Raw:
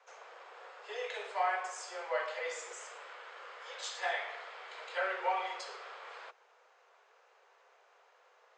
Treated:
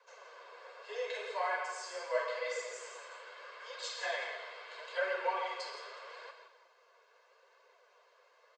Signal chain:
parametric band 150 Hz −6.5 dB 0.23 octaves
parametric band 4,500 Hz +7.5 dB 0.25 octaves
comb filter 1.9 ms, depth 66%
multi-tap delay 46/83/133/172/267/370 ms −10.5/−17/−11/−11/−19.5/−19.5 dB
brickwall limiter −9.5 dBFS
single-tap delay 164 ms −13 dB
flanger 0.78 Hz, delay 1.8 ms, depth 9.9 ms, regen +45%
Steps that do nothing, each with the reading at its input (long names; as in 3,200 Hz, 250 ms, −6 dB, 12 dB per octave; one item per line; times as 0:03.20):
parametric band 150 Hz: nothing at its input below 340 Hz
brickwall limiter −9.5 dBFS: peak of its input −17.5 dBFS